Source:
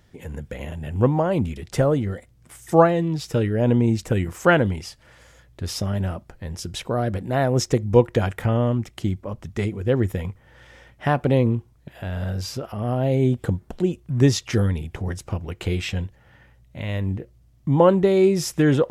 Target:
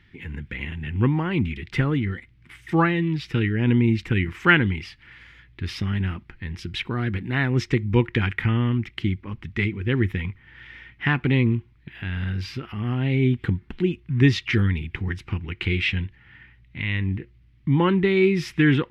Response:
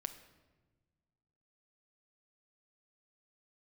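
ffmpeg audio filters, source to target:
-af "firequalizer=gain_entry='entry(350,0);entry(590,-21);entry(840,-6);entry(2100,11);entry(6800,-17)':delay=0.05:min_phase=1"

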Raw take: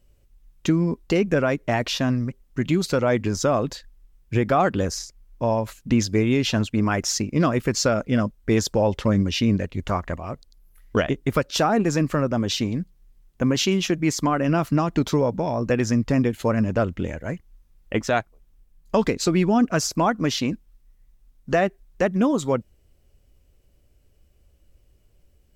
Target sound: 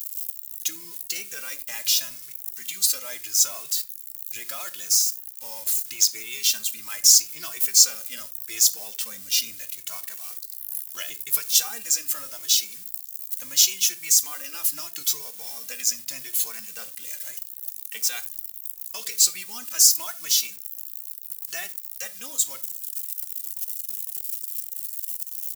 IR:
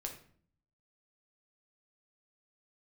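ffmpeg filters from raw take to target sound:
-filter_complex "[0:a]aeval=exprs='val(0)+0.5*0.0158*sgn(val(0))':channel_layout=same,aderivative,crystalizer=i=9.5:c=0,asplit=2[link_01][link_02];[1:a]atrim=start_sample=2205,atrim=end_sample=4410,lowshelf=frequency=180:gain=8[link_03];[link_02][link_03]afir=irnorm=-1:irlink=0,volume=-3.5dB[link_04];[link_01][link_04]amix=inputs=2:normalize=0,asplit=2[link_05][link_06];[link_06]adelay=2.2,afreqshift=0.78[link_07];[link_05][link_07]amix=inputs=2:normalize=1,volume=-7dB"

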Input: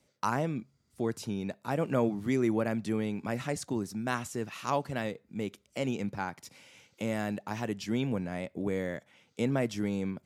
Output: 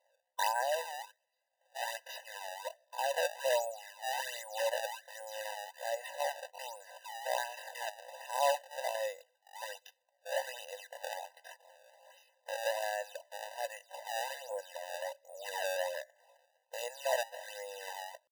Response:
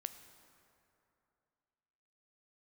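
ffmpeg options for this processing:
-af "acrusher=samples=24:mix=1:aa=0.000001:lfo=1:lforange=38.4:lforate=2.3,atempo=0.56,afftfilt=real='re*eq(mod(floor(b*sr/1024/510),2),1)':imag='im*eq(mod(floor(b*sr/1024/510),2),1)':win_size=1024:overlap=0.75,volume=1.5dB"

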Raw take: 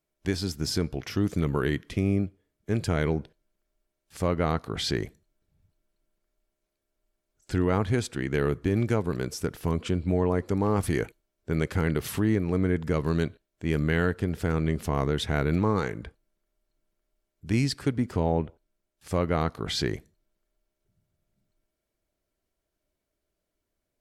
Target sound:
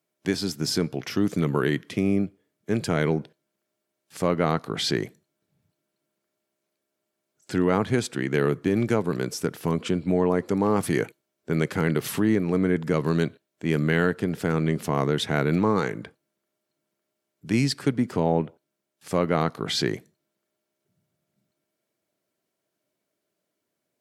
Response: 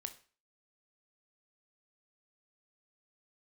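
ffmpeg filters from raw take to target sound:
-af "highpass=frequency=130:width=0.5412,highpass=frequency=130:width=1.3066,volume=3.5dB"

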